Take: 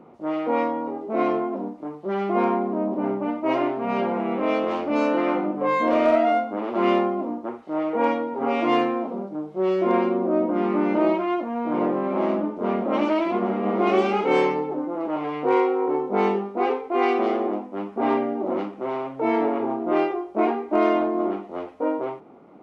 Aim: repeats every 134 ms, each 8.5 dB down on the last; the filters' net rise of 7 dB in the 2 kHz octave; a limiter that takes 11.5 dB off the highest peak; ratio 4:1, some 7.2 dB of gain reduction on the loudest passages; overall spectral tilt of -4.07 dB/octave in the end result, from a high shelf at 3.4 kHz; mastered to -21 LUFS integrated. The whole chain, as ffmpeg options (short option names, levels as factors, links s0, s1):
-af "equalizer=f=2000:t=o:g=6,highshelf=f=3400:g=7.5,acompressor=threshold=0.0708:ratio=4,alimiter=level_in=1.12:limit=0.0631:level=0:latency=1,volume=0.891,aecho=1:1:134|268|402|536:0.376|0.143|0.0543|0.0206,volume=3.55"